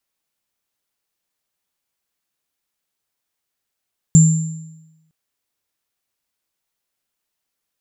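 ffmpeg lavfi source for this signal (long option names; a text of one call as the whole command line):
ffmpeg -f lavfi -i "aevalsrc='0.631*pow(10,-3*t/1.01)*sin(2*PI*159*t)+0.251*pow(10,-3*t/0.82)*sin(2*PI*7280*t)':duration=0.96:sample_rate=44100" out.wav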